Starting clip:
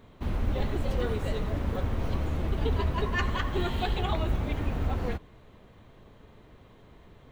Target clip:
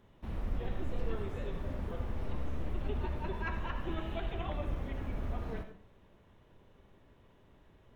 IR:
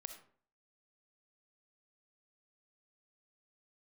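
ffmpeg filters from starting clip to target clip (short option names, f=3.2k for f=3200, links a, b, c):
-filter_complex "[0:a]acrossover=split=3500[a][b];[b]acompressor=threshold=-56dB:ratio=4:attack=1:release=60[c];[a][c]amix=inputs=2:normalize=0[d];[1:a]atrim=start_sample=2205[e];[d][e]afir=irnorm=-1:irlink=0,asetrate=40517,aresample=44100,volume=-4dB"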